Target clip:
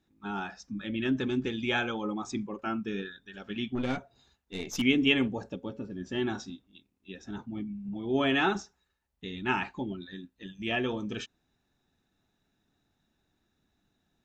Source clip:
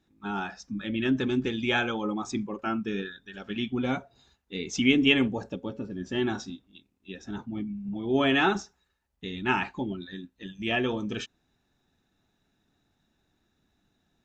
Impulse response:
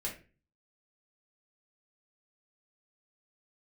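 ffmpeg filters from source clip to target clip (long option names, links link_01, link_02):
-filter_complex "[0:a]asettb=1/sr,asplit=3[link_01][link_02][link_03];[link_01]atrim=end=3.754[link_04];[link_02]atrim=start=3.75:end=4.82,asetpts=PTS-STARTPTS,afade=type=in:duration=0.004:curve=qsin,afade=type=out:start_time=1.066:duration=0.004:curve=qsin,aeval=exprs='0.178*(cos(1*acos(clip(val(0)/0.178,-1,1)))-cos(1*PI/2))+0.00794*(cos(6*acos(clip(val(0)/0.178,-1,1)))-cos(6*PI/2))+0.0178*(cos(8*acos(clip(val(0)/0.178,-1,1)))-cos(8*PI/2))':channel_layout=same[link_05];[link_03]atrim=start=4.816[link_06];[link_04][link_05]acrossfade=duration=0.004:curve1=hsin:curve2=qsin[link_07];[link_07][link_06]acrossfade=duration=0.004:curve1=qsin:curve2=hsin,volume=-3dB"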